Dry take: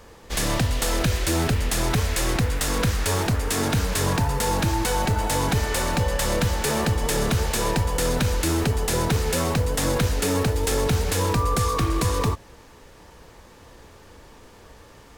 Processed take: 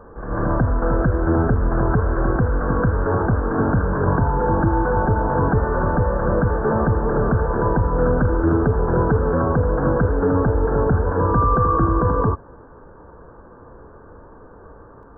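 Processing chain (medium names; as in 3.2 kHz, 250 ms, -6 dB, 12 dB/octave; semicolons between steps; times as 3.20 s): rippled Chebyshev low-pass 1.6 kHz, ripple 3 dB; on a send: reverse echo 145 ms -7 dB; on the sum: trim +6 dB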